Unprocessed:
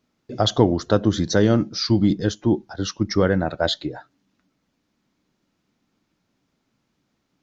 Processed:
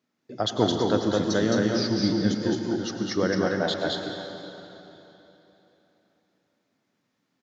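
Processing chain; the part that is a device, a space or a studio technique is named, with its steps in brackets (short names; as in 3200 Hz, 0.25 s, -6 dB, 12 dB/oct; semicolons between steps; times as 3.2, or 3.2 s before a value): stadium PA (HPF 150 Hz 12 dB/oct; bell 1800 Hz +4 dB 0.35 oct; loudspeakers at several distances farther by 74 m -2 dB, 87 m -12 dB; reverb RT60 3.4 s, pre-delay 89 ms, DRR 5 dB); gain -6.5 dB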